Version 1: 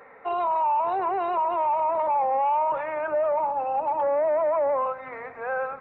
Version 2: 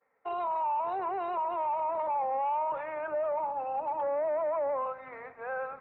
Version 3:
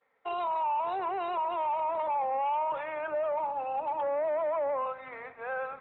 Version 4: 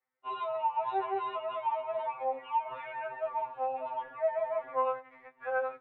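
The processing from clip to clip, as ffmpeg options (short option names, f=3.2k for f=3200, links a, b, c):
-af "agate=range=-33dB:threshold=-37dB:ratio=3:detection=peak,volume=-7dB"
-af "lowpass=f=3.4k:t=q:w=4.3"
-af "agate=range=-14dB:threshold=-40dB:ratio=16:detection=peak,afftfilt=real='re*2.45*eq(mod(b,6),0)':imag='im*2.45*eq(mod(b,6),0)':win_size=2048:overlap=0.75"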